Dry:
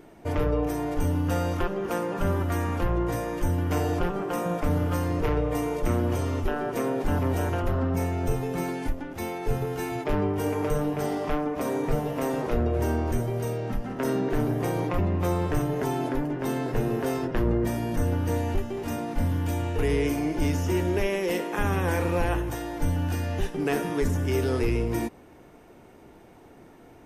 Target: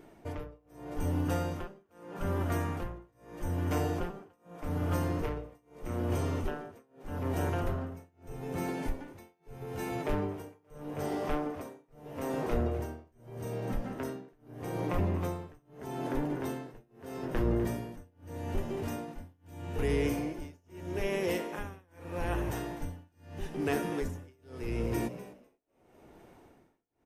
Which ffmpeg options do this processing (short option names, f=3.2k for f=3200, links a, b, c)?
-filter_complex "[0:a]asplit=6[a][b][c][d][e][f];[b]adelay=250,afreqshift=69,volume=-13dB[g];[c]adelay=500,afreqshift=138,volume=-19dB[h];[d]adelay=750,afreqshift=207,volume=-25dB[i];[e]adelay=1000,afreqshift=276,volume=-31.1dB[j];[f]adelay=1250,afreqshift=345,volume=-37.1dB[k];[a][g][h][i][j][k]amix=inputs=6:normalize=0,tremolo=f=0.8:d=0.99,volume=-4.5dB"